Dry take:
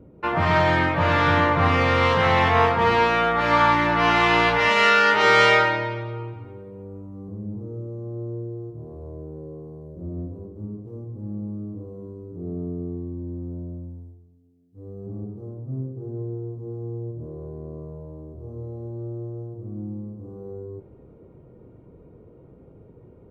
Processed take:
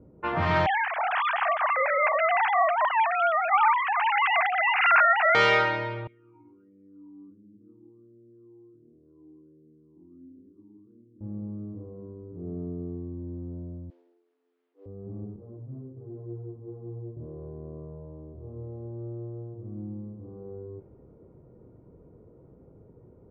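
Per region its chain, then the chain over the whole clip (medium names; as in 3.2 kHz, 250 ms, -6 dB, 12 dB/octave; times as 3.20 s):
0.66–5.35 s: formants replaced by sine waves + steep high-pass 380 Hz 72 dB/octave
6.07–11.21 s: delay 180 ms -9.5 dB + compression 4:1, threshold -32 dBFS + talking filter i-u 1.4 Hz
13.90–14.86 s: CVSD coder 64 kbps + steep high-pass 330 Hz 48 dB/octave + treble shelf 2 kHz +8.5 dB
15.36–17.17 s: high-pass 54 Hz + detune thickener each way 26 cents
whole clip: level-controlled noise filter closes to 1.3 kHz, open at -18 dBFS; low-pass 5.7 kHz 12 dB/octave; trim -4.5 dB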